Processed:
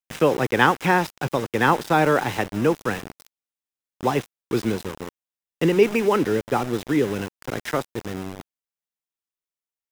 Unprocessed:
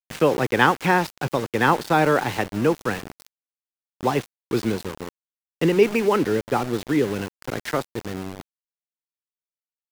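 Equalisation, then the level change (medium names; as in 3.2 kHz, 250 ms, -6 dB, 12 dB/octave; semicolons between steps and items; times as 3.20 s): band-stop 4.4 kHz, Q 12; 0.0 dB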